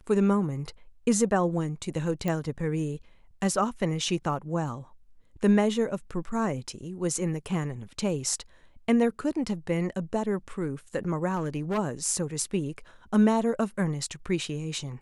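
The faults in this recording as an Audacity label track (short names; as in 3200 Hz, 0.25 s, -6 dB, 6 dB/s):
2.280000	2.280000	pop
11.350000	11.790000	clipped -24.5 dBFS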